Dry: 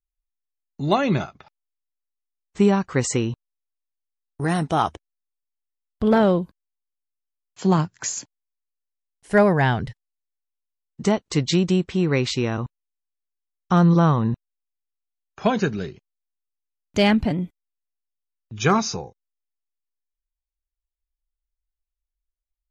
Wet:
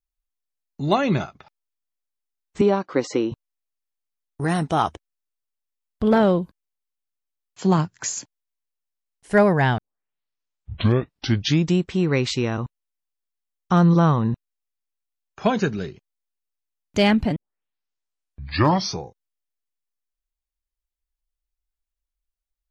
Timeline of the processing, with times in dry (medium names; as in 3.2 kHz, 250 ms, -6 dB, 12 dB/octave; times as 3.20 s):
2.61–3.32 s: cabinet simulation 270–5000 Hz, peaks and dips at 310 Hz +9 dB, 570 Hz +5 dB, 1.8 kHz -5 dB, 2.7 kHz -5 dB
9.78 s: tape start 2.02 s
17.36 s: tape start 1.68 s